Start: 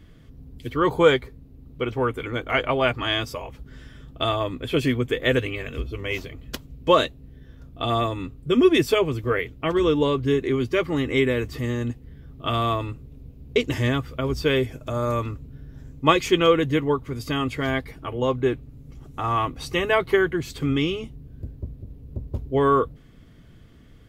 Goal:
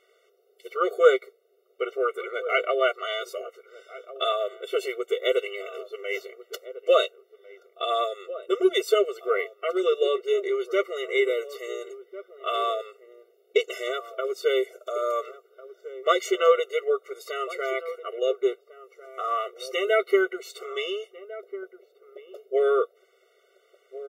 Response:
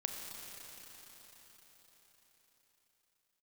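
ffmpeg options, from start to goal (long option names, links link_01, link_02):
-filter_complex "[0:a]asplit=2[link_01][link_02];[link_02]adelay=1399,volume=-15dB,highshelf=frequency=4000:gain=-31.5[link_03];[link_01][link_03]amix=inputs=2:normalize=0,afftfilt=real='re*eq(mod(floor(b*sr/1024/380),2),1)':imag='im*eq(mod(floor(b*sr/1024/380),2),1)':win_size=1024:overlap=0.75"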